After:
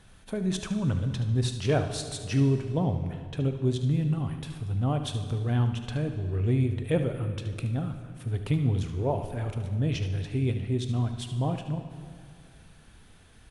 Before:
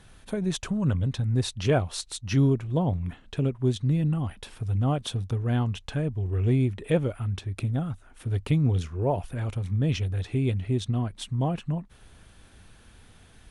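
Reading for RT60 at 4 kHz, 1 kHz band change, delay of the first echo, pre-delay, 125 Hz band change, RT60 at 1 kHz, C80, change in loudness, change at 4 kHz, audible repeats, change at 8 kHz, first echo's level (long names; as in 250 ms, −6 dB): 1.7 s, −1.5 dB, 74 ms, 15 ms, −1.5 dB, 2.3 s, 10.0 dB, −1.5 dB, −1.5 dB, 1, −2.0 dB, −12.0 dB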